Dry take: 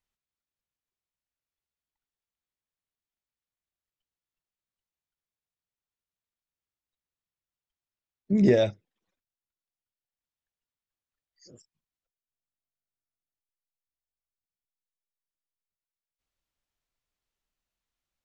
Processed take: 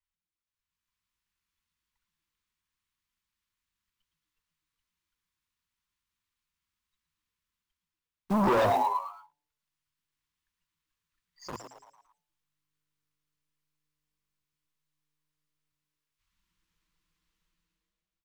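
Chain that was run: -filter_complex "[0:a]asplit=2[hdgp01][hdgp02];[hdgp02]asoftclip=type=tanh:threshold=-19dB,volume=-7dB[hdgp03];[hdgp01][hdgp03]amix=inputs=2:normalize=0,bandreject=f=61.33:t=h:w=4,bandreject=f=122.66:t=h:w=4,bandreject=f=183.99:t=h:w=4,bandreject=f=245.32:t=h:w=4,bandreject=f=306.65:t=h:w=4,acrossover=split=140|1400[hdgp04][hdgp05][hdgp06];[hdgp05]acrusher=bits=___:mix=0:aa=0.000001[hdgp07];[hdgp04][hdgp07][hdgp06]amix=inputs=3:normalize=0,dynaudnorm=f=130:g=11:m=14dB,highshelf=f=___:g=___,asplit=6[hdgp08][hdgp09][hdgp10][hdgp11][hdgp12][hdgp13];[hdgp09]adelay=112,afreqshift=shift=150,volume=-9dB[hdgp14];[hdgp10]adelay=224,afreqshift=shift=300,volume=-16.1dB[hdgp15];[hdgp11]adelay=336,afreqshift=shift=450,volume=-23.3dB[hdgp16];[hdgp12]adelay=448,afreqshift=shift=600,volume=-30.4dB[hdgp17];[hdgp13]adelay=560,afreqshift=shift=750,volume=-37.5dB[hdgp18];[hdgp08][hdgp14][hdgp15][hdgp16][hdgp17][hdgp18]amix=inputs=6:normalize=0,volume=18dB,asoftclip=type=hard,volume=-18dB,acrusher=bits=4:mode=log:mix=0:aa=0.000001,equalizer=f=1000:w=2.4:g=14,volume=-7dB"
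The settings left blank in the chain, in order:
7, 5000, -7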